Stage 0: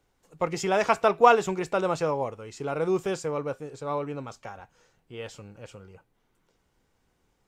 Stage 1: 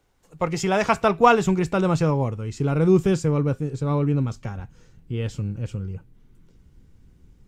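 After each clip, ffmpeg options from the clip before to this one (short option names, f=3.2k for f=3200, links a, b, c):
-af "asubboost=boost=9.5:cutoff=230,volume=3.5dB"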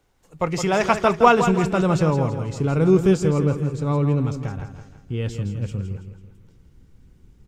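-af "aecho=1:1:165|330|495|660|825:0.355|0.156|0.0687|0.0302|0.0133,volume=1dB"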